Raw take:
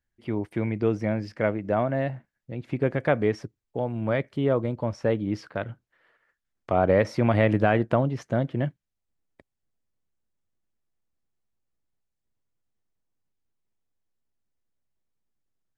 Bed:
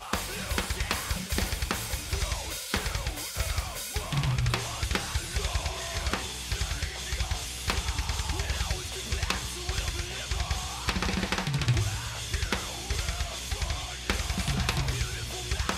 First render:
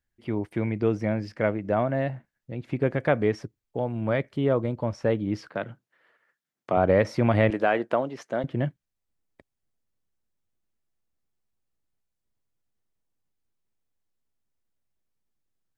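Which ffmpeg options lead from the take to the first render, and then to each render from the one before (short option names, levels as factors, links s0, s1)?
-filter_complex "[0:a]asettb=1/sr,asplit=3[s0][s1][s2];[s0]atrim=end=5.494[s3];[s1]atrim=start=5.49:end=6.77,asetpts=PTS-STARTPTS,afade=t=in:d=0.004:c=qsin,afade=t=out:st=1.276:d=0.004:c=qsin,highpass=f=130:w=0.5412,highpass=f=130:w=1.3066[s4];[s2]atrim=start=6.766[s5];[s3][s4]acrossfade=d=0.004:c1=hsin:c2=qsin[s6];[s6][s5]acrossfade=d=0.004:c1=qsin:c2=hsin,asettb=1/sr,asplit=3[s7][s8][s9];[s7]atrim=end=7.504[s10];[s8]atrim=start=7.5:end=8.44,asetpts=PTS-STARTPTS,afade=t=in:d=0.004:c=qsin,afade=t=out:st=0.936:d=0.004:c=qsin,highpass=340[s11];[s9]atrim=start=8.436[s12];[s10][s11]acrossfade=d=0.004:c1=hsin:c2=qsin[s13];[s13][s12]acrossfade=d=0.004:c1=qsin:c2=hsin"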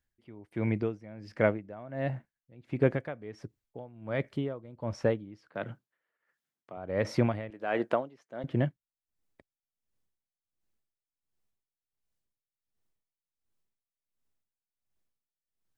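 -af "aeval=exprs='val(0)*pow(10,-21*(0.5-0.5*cos(2*PI*1.4*n/s))/20)':c=same"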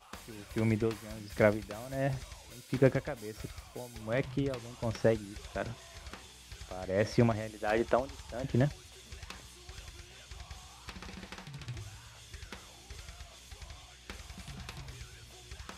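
-filter_complex "[1:a]volume=0.141[s0];[0:a][s0]amix=inputs=2:normalize=0"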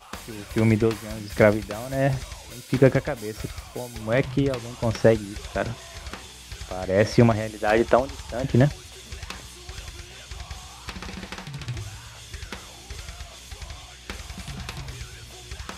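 -af "volume=3.16,alimiter=limit=0.708:level=0:latency=1"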